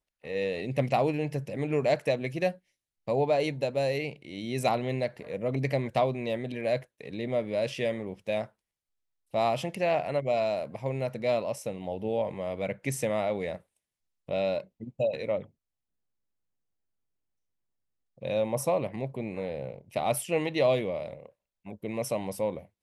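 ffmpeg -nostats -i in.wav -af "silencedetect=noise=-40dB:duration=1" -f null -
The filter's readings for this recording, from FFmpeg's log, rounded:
silence_start: 15.43
silence_end: 18.22 | silence_duration: 2.79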